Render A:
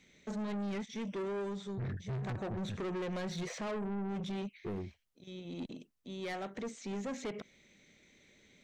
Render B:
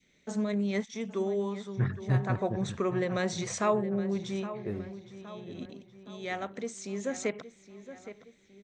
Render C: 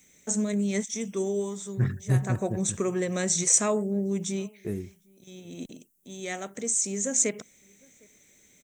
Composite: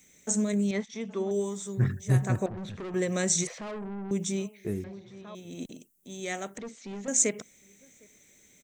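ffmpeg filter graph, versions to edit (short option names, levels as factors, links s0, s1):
-filter_complex "[1:a]asplit=2[s0][s1];[0:a]asplit=3[s2][s3][s4];[2:a]asplit=6[s5][s6][s7][s8][s9][s10];[s5]atrim=end=0.712[s11];[s0]atrim=start=0.708:end=1.312[s12];[s6]atrim=start=1.308:end=2.462[s13];[s2]atrim=start=2.458:end=2.942[s14];[s7]atrim=start=2.938:end=3.472[s15];[s3]atrim=start=3.468:end=4.112[s16];[s8]atrim=start=4.108:end=4.842[s17];[s1]atrim=start=4.838:end=5.352[s18];[s9]atrim=start=5.348:end=6.582[s19];[s4]atrim=start=6.578:end=7.082[s20];[s10]atrim=start=7.078[s21];[s11][s12]acrossfade=d=0.004:c1=hsin:c2=hsin[s22];[s22][s13]acrossfade=d=0.004:c1=hsin:c2=hsin[s23];[s23][s14]acrossfade=d=0.004:c1=hsin:c2=hsin[s24];[s24][s15]acrossfade=d=0.004:c1=hsin:c2=hsin[s25];[s25][s16]acrossfade=d=0.004:c1=hsin:c2=hsin[s26];[s26][s17]acrossfade=d=0.004:c1=hsin:c2=hsin[s27];[s27][s18]acrossfade=d=0.004:c1=hsin:c2=hsin[s28];[s28][s19]acrossfade=d=0.004:c1=hsin:c2=hsin[s29];[s29][s20]acrossfade=d=0.004:c1=hsin:c2=hsin[s30];[s30][s21]acrossfade=d=0.004:c1=hsin:c2=hsin"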